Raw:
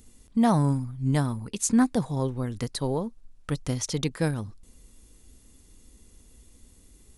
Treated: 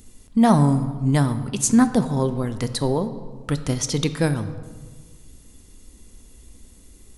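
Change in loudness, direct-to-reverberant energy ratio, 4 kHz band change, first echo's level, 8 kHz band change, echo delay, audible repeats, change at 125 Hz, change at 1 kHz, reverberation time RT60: +5.5 dB, 10.0 dB, +6.0 dB, none, +5.5 dB, none, none, +5.5 dB, +6.0 dB, 1.5 s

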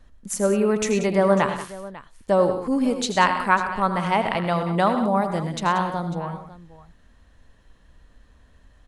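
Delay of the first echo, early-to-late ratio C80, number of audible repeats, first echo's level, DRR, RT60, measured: 82 ms, none, 4, -12.5 dB, none, none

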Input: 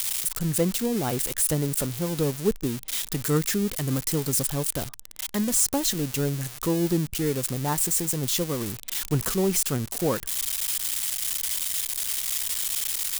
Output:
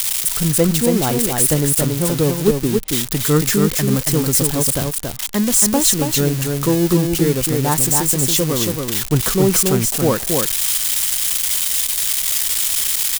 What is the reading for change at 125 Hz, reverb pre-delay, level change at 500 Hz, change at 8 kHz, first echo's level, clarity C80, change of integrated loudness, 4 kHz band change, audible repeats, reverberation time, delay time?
+9.5 dB, none, +9.5 dB, +9.5 dB, -4.0 dB, none, +9.5 dB, +9.5 dB, 1, none, 0.278 s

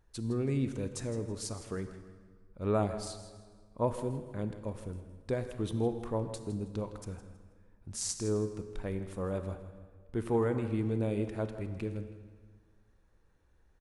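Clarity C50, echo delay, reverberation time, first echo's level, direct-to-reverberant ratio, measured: 9.0 dB, 0.161 s, 1.7 s, -14.0 dB, 8.5 dB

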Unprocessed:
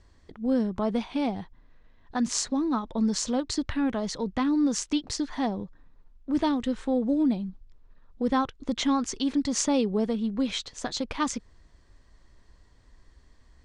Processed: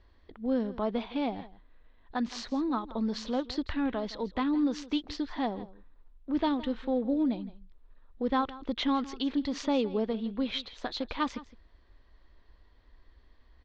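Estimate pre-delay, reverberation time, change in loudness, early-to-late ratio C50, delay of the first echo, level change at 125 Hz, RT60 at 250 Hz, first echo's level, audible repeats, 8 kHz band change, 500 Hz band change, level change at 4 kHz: none, none, -4.0 dB, none, 0.164 s, n/a, none, -17.5 dB, 1, under -15 dB, -2.0 dB, -3.5 dB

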